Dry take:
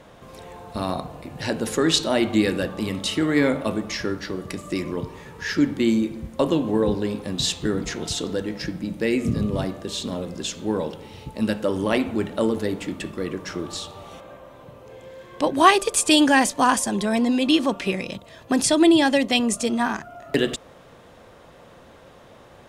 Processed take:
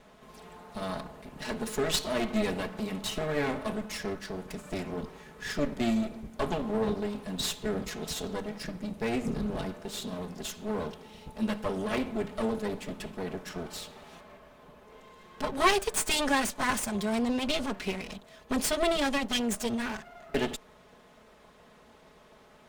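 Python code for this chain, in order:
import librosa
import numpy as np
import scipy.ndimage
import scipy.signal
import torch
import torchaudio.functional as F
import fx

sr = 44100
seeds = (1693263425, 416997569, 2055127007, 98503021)

y = fx.lower_of_two(x, sr, delay_ms=4.7)
y = F.gain(torch.from_numpy(y), -6.5).numpy()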